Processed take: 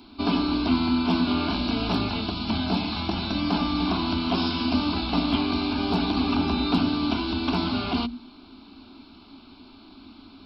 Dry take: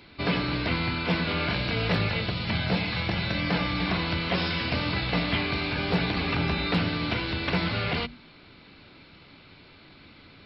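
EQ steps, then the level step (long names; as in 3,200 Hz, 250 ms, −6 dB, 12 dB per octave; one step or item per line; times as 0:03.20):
parametric band 250 Hz +11.5 dB 0.27 octaves
phaser with its sweep stopped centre 510 Hz, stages 6
+4.5 dB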